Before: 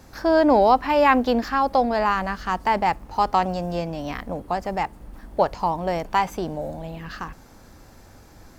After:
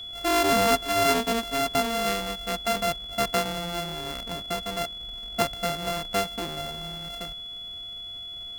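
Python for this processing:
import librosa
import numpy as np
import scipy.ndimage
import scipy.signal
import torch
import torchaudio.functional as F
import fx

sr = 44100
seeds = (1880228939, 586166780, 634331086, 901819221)

y = np.r_[np.sort(x[:len(x) // 64 * 64].reshape(-1, 64), axis=1).ravel(), x[len(x) // 64 * 64:]]
y = y + 10.0 ** (-30.0 / 20.0) * np.sin(2.0 * np.pi * 3400.0 * np.arange(len(y)) / sr)
y = F.gain(torch.from_numpy(y), -5.5).numpy()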